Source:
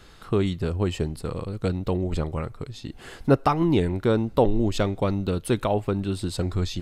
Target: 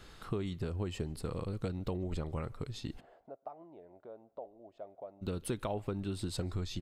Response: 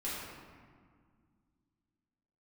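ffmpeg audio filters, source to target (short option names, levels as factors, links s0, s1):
-filter_complex "[0:a]acompressor=threshold=0.0355:ratio=5,asplit=3[s0][s1][s2];[s0]afade=t=out:st=2.99:d=0.02[s3];[s1]bandpass=f=650:t=q:w=6:csg=0,afade=t=in:st=2.99:d=0.02,afade=t=out:st=5.21:d=0.02[s4];[s2]afade=t=in:st=5.21:d=0.02[s5];[s3][s4][s5]amix=inputs=3:normalize=0,asplit=2[s6][s7];[s7]adelay=145.8,volume=0.0398,highshelf=f=4000:g=-3.28[s8];[s6][s8]amix=inputs=2:normalize=0,volume=0.631"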